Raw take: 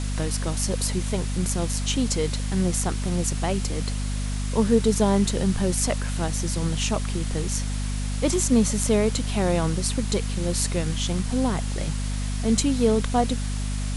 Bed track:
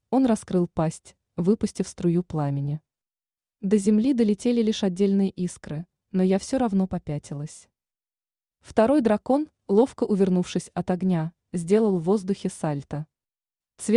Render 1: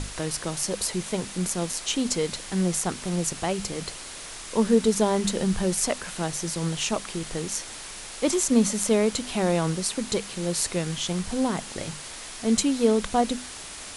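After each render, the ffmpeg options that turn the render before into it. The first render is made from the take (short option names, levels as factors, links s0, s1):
-af "bandreject=f=50:t=h:w=6,bandreject=f=100:t=h:w=6,bandreject=f=150:t=h:w=6,bandreject=f=200:t=h:w=6,bandreject=f=250:t=h:w=6"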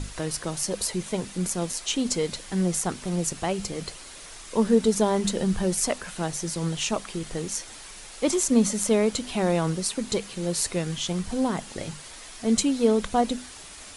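-af "afftdn=nr=6:nf=-40"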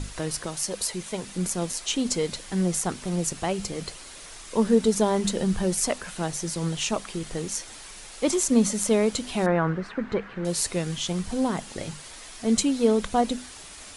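-filter_complex "[0:a]asettb=1/sr,asplit=3[s0][s1][s2];[s0]atrim=end=0.464[s3];[s1]atrim=start=0.46:end=1.28,asetpts=PTS-STARTPTS,afade=t=in:d=0.004:c=qsin,afade=t=out:st=0.816:d=0.004:c=qsin,lowshelf=f=500:g=-5.5[s4];[s2]atrim=start=1.276[s5];[s3][s4]acrossfade=d=0.004:c1=hsin:c2=qsin[s6];[s6][s5]acrossfade=d=0.004:c1=qsin:c2=hsin,asettb=1/sr,asplit=3[s7][s8][s9];[s7]atrim=end=9.464[s10];[s8]atrim=start=9.46:end=10.45,asetpts=PTS-STARTPTS,afade=t=in:d=0.004:c=qsin,afade=t=out:st=0.986:d=0.004:c=qsin,lowpass=f=1600:t=q:w=2.7[s11];[s9]atrim=start=10.446[s12];[s10][s11]acrossfade=d=0.004:c1=hsin:c2=qsin[s13];[s13][s12]acrossfade=d=0.004:c1=qsin:c2=hsin"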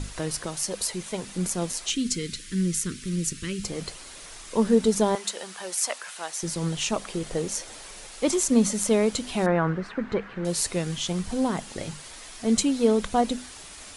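-filter_complex "[0:a]asettb=1/sr,asplit=3[s0][s1][s2];[s0]atrim=end=1.904[s3];[s1]atrim=start=1.9:end=3.64,asetpts=PTS-STARTPTS,afade=t=in:d=0.004:c=qsin,afade=t=out:st=1.736:d=0.004:c=qsin,asuperstop=centerf=750:order=4:qfactor=0.59[s4];[s2]atrim=start=3.636[s5];[s3][s4]acrossfade=d=0.004:c1=hsin:c2=qsin[s6];[s6][s5]acrossfade=d=0.004:c1=qsin:c2=hsin,asettb=1/sr,asplit=3[s7][s8][s9];[s7]atrim=end=5.154[s10];[s8]atrim=start=5.15:end=6.43,asetpts=PTS-STARTPTS,afade=t=in:d=0.004:c=qsin,afade=t=out:st=1.276:d=0.004:c=qsin,highpass=790[s11];[s9]atrim=start=6.426[s12];[s10][s11]acrossfade=d=0.004:c1=hsin:c2=qsin[s13];[s13][s12]acrossfade=d=0.004:c1=qsin:c2=hsin,asettb=1/sr,asplit=3[s14][s15][s16];[s14]atrim=end=7.014[s17];[s15]atrim=start=7.01:end=8.07,asetpts=PTS-STARTPTS,afade=t=in:d=0.004:c=qsin,afade=t=out:st=1.056:d=0.004:c=qsin,equalizer=f=540:w=1.5:g=6.5[s18];[s16]atrim=start=8.066[s19];[s17][s18]acrossfade=d=0.004:c1=hsin:c2=qsin[s20];[s20][s19]acrossfade=d=0.004:c1=qsin:c2=hsin"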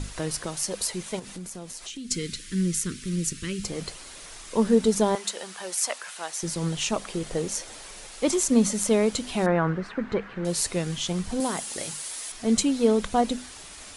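-filter_complex "[0:a]asettb=1/sr,asplit=3[s0][s1][s2];[s0]atrim=end=1.194[s3];[s1]atrim=start=1.19:end=2.11,asetpts=PTS-STARTPTS,afade=t=in:d=0.004:c=qsin,afade=t=out:st=0.916:d=0.004:c=qsin,acompressor=threshold=0.0158:ratio=4:attack=3.2:release=140:knee=1:detection=peak[s4];[s2]atrim=start=2.106[s5];[s3][s4]acrossfade=d=0.004:c1=hsin:c2=qsin[s6];[s6][s5]acrossfade=d=0.004:c1=qsin:c2=hsin,asettb=1/sr,asplit=3[s7][s8][s9];[s7]atrim=end=11.404[s10];[s8]atrim=start=11.4:end=12.32,asetpts=PTS-STARTPTS,afade=t=in:d=0.004:c=qsin,afade=t=out:st=0.916:d=0.004:c=qsin,aemphasis=mode=production:type=bsi[s11];[s9]atrim=start=12.316[s12];[s10][s11]acrossfade=d=0.004:c1=hsin:c2=qsin[s13];[s13][s12]acrossfade=d=0.004:c1=qsin:c2=hsin"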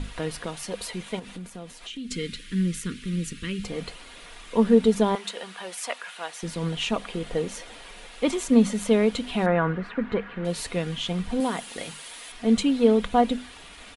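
-af "highshelf=f=4300:t=q:w=1.5:g=-8.5,aecho=1:1:4.2:0.34"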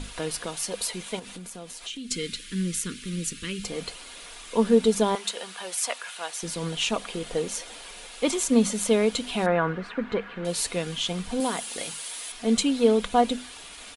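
-af "bass=f=250:g=-5,treble=f=4000:g=8,bandreject=f=1900:w=27"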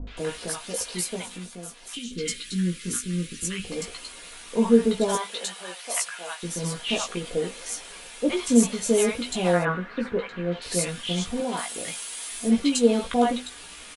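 -filter_complex "[0:a]asplit=2[s0][s1];[s1]adelay=17,volume=0.631[s2];[s0][s2]amix=inputs=2:normalize=0,acrossover=split=770|4000[s3][s4][s5];[s4]adelay=70[s6];[s5]adelay=170[s7];[s3][s6][s7]amix=inputs=3:normalize=0"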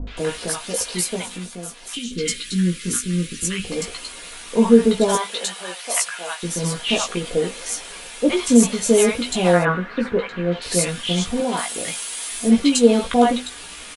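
-af "volume=2,alimiter=limit=0.891:level=0:latency=1"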